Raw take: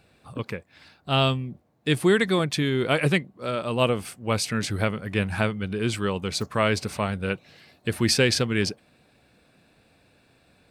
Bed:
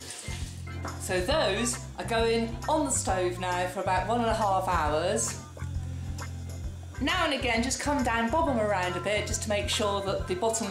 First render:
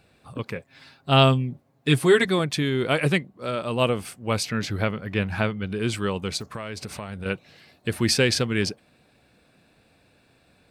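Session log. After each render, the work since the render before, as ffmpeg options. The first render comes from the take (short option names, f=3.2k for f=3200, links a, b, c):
-filter_complex "[0:a]asettb=1/sr,asplit=3[a][b][c];[a]atrim=end=0.554[d];[b]atrim=start=0.55:end=2.25,asetpts=PTS-STARTPTS,afade=t=in:d=0.004:c=qsin,afade=t=out:st=1.696:d=0.004:c=qsin,aecho=1:1:7.4:0.87,atrim=end_sample=74970[e];[c]atrim=start=2.246[f];[d][e]acrossfade=d=0.004:c1=hsin:c2=qsin[g];[g][f]acrossfade=d=0.004:c1=qsin:c2=hsin,asettb=1/sr,asplit=3[h][i][j];[h]atrim=end=4.434[k];[i]atrim=start=4.43:end=5.69,asetpts=PTS-STARTPTS,afade=t=in:d=0.004:c=qsin,afade=t=out:st=1.256:d=0.004:c=qsin,equalizer=f=9k:w=1.9:g=-12.5[l];[j]atrim=start=5.686[m];[k][l]acrossfade=d=0.004:c1=hsin:c2=qsin[n];[n][m]acrossfade=d=0.004:c1=qsin:c2=hsin,asettb=1/sr,asplit=3[o][p][q];[o]atrim=end=6.374[r];[p]atrim=start=6.37:end=7.26,asetpts=PTS-STARTPTS,afade=t=in:d=0.004:c=qsin,afade=t=out:st=0.886:d=0.004:c=qsin,acompressor=threshold=-30dB:ratio=6:attack=3.2:release=140:knee=1:detection=peak[s];[q]atrim=start=7.256[t];[r][s]acrossfade=d=0.004:c1=hsin:c2=qsin[u];[u][t]acrossfade=d=0.004:c1=qsin:c2=hsin"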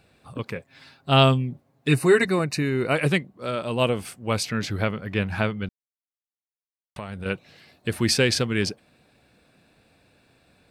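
-filter_complex "[0:a]asettb=1/sr,asplit=3[a][b][c];[a]atrim=end=1.884[d];[b]atrim=start=1.88:end=2.96,asetpts=PTS-STARTPTS,afade=t=in:d=0.004:c=qsin,afade=t=out:st=1.076:d=0.004:c=qsin,asuperstop=centerf=3300:order=20:qfactor=5.3[e];[c]atrim=start=2.956[f];[d][e]acrossfade=d=0.004:c1=hsin:c2=qsin[g];[g][f]acrossfade=d=0.004:c1=qsin:c2=hsin,asettb=1/sr,asplit=3[h][i][j];[h]atrim=end=3.634[k];[i]atrim=start=3.63:end=4.06,asetpts=PTS-STARTPTS,afade=t=in:d=0.004:c=qsin,afade=t=out:st=0.426:d=0.004:c=qsin,bandreject=f=1.2k:w=12[l];[j]atrim=start=4.056[m];[k][l]acrossfade=d=0.004:c1=hsin:c2=qsin[n];[n][m]acrossfade=d=0.004:c1=qsin:c2=hsin,asplit=3[o][p][q];[o]atrim=end=5.69,asetpts=PTS-STARTPTS,afade=t=out:st=5.686:d=0.004:c=hsin[r];[p]atrim=start=5.69:end=6.96,asetpts=PTS-STARTPTS,volume=0[s];[q]atrim=start=6.96,asetpts=PTS-STARTPTS,afade=t=in:d=0.004:c=hsin[t];[r][s][t]concat=n=3:v=0:a=1"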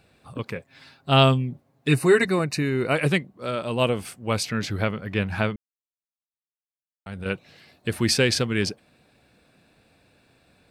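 -filter_complex "[0:a]asplit=3[a][b][c];[a]atrim=end=5.56,asetpts=PTS-STARTPTS,afade=t=out:st=5.556:d=0.004:c=hsin[d];[b]atrim=start=5.56:end=7.06,asetpts=PTS-STARTPTS,volume=0[e];[c]atrim=start=7.06,asetpts=PTS-STARTPTS,afade=t=in:d=0.004:c=hsin[f];[d][e][f]concat=n=3:v=0:a=1"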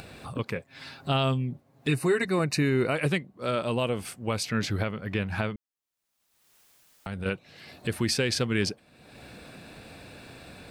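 -af "acompressor=mode=upward:threshold=-33dB:ratio=2.5,alimiter=limit=-15.5dB:level=0:latency=1:release=286"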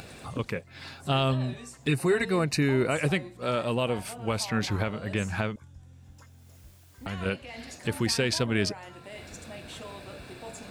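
-filter_complex "[1:a]volume=-16dB[a];[0:a][a]amix=inputs=2:normalize=0"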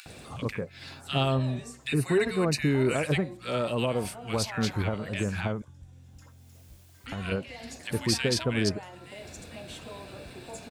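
-filter_complex "[0:a]acrossover=split=1400[a][b];[a]adelay=60[c];[c][b]amix=inputs=2:normalize=0"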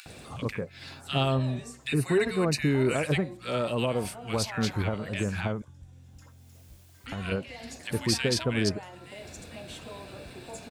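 -af anull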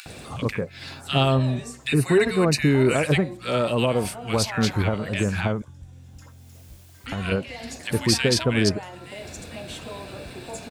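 -af "volume=6dB"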